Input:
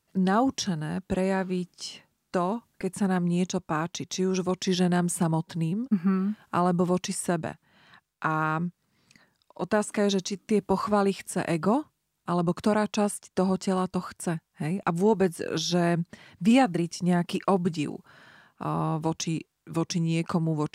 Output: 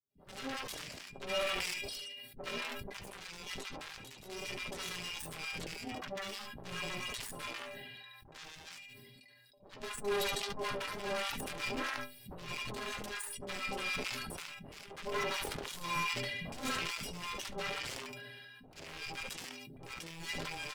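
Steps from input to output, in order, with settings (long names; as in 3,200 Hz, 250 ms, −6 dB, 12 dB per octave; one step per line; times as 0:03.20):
loose part that buzzes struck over −34 dBFS, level −25 dBFS
low-shelf EQ 150 Hz −10 dB
in parallel at −3 dB: downward compressor 4 to 1, threshold −34 dBFS, peak gain reduction 14 dB
on the sum: phaser with its sweep stopped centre 2,900 Hz, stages 4
wave folding −25 dBFS
stiff-string resonator 120 Hz, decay 0.44 s, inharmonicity 0.03
on a send: repeating echo 72 ms, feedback 16%, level −9 dB
on the sum: harmonic generator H 5 −21 dB, 7 −12 dB, 8 −34 dB, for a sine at −26.5 dBFS
three-band delay without the direct sound lows, mids, highs 30/100 ms, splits 220/870 Hz
level that may fall only so fast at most 20 dB per second
level +4.5 dB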